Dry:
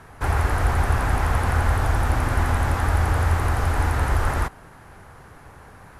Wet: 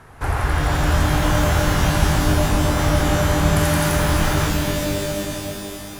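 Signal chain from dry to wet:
0:02.20–0:02.79: low-pass filter 1,400 Hz
0:03.56–0:03.96: spectral tilt +3.5 dB per octave
reverb with rising layers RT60 3.2 s, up +12 semitones, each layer −2 dB, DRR 2.5 dB

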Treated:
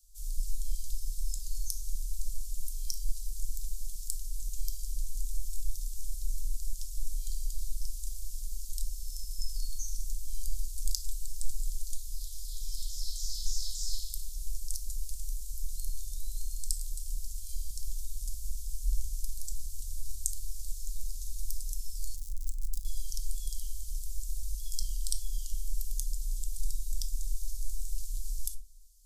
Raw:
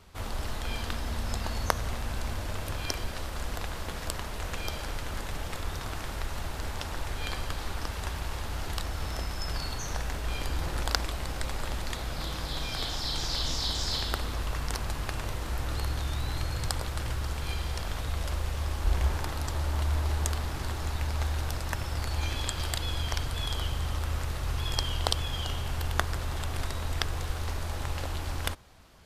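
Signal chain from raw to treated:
0:22.16–0:22.85: comparator with hysteresis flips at −26 dBFS
inverse Chebyshev band-stop filter 180–1,300 Hz, stop band 80 dB
rectangular room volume 390 cubic metres, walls furnished, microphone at 0.85 metres
level +3 dB

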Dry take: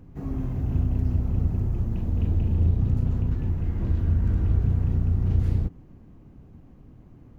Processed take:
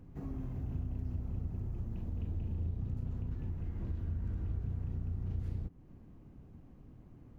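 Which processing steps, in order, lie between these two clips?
downward compressor 2 to 1, threshold −34 dBFS, peak gain reduction 10 dB
level −6 dB

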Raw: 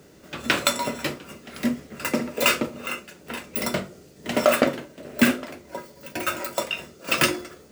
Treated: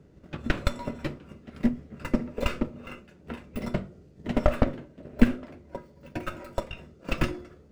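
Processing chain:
one-sided soft clipper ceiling −17.5 dBFS
RIAA equalisation playback
transient designer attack +8 dB, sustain +1 dB
level −11.5 dB

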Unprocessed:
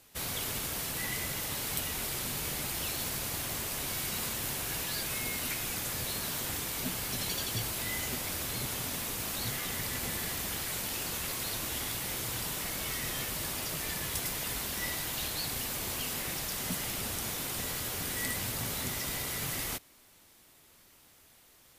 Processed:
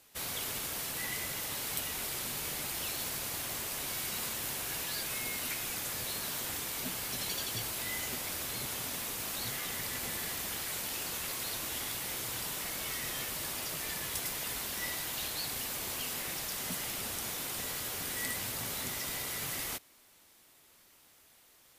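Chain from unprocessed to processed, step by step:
low-shelf EQ 230 Hz −7 dB
level −1.5 dB

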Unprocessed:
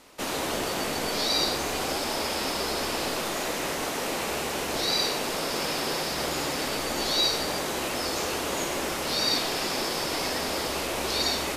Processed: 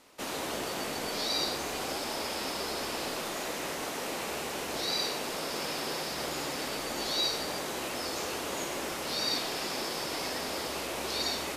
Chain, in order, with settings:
low-shelf EQ 63 Hz −8 dB
level −5.5 dB

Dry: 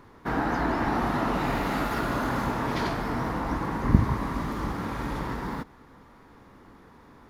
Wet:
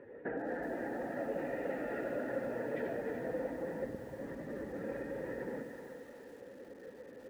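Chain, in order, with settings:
expanding power law on the bin magnitudes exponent 1.6
downward compressor 10 to 1, threshold −35 dBFS, peak gain reduction 23.5 dB
formant filter e
high-frequency loss of the air 240 metres
echo with a time of its own for lows and highs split 590 Hz, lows 91 ms, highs 303 ms, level −9.5 dB
feedback echo at a low word length 374 ms, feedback 35%, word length 12 bits, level −9.5 dB
level +16.5 dB

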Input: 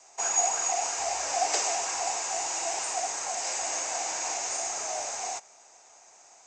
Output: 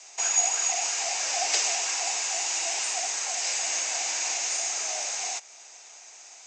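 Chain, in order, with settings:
meter weighting curve D
in parallel at 0 dB: downward compressor, threshold −36 dBFS, peak gain reduction 20 dB
on the sum: level −5.5 dB

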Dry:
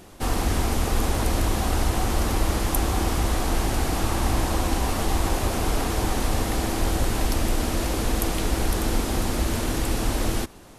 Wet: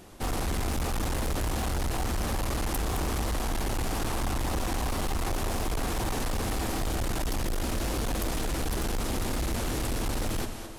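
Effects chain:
on a send: echo with a time of its own for lows and highs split 370 Hz, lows 116 ms, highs 215 ms, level −10.5 dB
on the sum: hard clipping −23 dBFS, distortion −8 dB
level −3 dB

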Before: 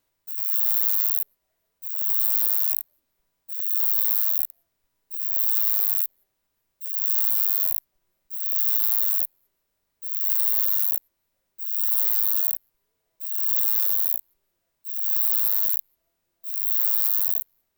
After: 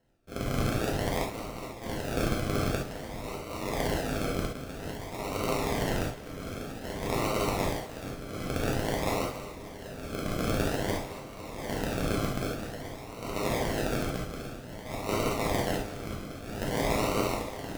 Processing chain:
feedback delay that plays each chunk backwards 560 ms, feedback 64%, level −13 dB
low-pass filter 2,500 Hz 6 dB per octave
in parallel at −1.5 dB: brickwall limiter −27.5 dBFS, peak gain reduction 9 dB
0:09.09–0:10.30: on the sum: notch comb filter 1,400 Hz
sample-and-hold swept by an LFO 37×, swing 60% 0.51 Hz
on a send: echo with a time of its own for lows and highs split 410 Hz, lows 506 ms, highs 218 ms, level −16 dB
on the sum: reverb whose tail is shaped and stops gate 90 ms flat, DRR −3 dB

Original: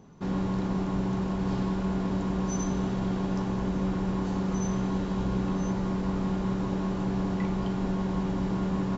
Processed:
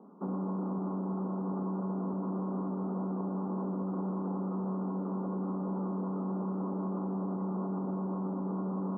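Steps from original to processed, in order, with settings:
Chebyshev band-pass filter 190–1,300 Hz, order 5
brickwall limiter −29 dBFS, peak gain reduction 10 dB
level +1.5 dB

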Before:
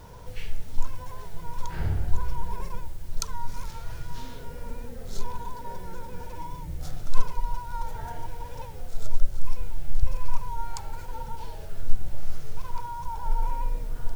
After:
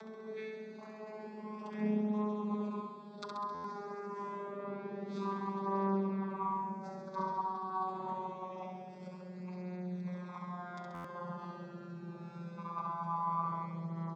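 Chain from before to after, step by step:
vocoder with a gliding carrier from A3, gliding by −5 semitones
low-pass filter 3,700 Hz 12 dB per octave
low-shelf EQ 150 Hz −11 dB
notch filter 2,900 Hz, Q 6.4
comb filter 5.1 ms, depth 84%
upward compression, threshold −45 dBFS
flutter between parallel walls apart 11.4 metres, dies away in 0.91 s
buffer that repeats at 0:03.54/0:10.94, samples 512, times 8
level −2 dB

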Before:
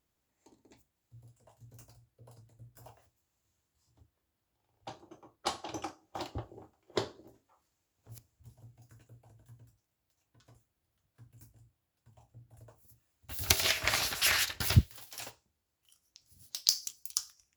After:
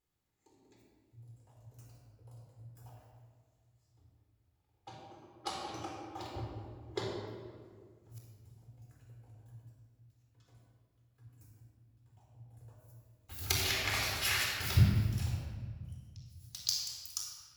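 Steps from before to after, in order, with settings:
rectangular room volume 2,500 cubic metres, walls mixed, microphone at 4 metres
level −9 dB

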